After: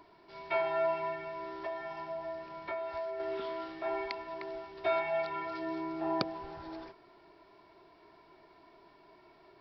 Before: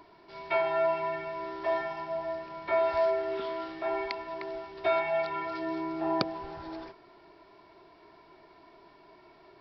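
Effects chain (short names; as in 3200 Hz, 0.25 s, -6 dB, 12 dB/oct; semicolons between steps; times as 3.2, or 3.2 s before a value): 1.12–3.2 compressor 6:1, threshold -32 dBFS, peak gain reduction 9 dB; gain -3.5 dB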